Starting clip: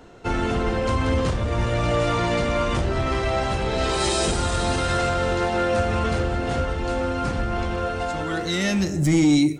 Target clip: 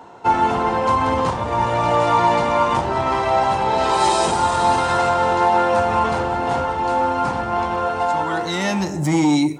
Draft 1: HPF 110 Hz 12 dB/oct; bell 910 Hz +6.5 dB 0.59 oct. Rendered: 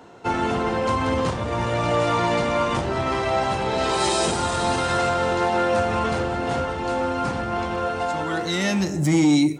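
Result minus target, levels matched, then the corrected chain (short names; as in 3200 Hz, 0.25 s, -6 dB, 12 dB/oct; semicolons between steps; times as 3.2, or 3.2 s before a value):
1000 Hz band -3.5 dB
HPF 110 Hz 12 dB/oct; bell 910 Hz +17.5 dB 0.59 oct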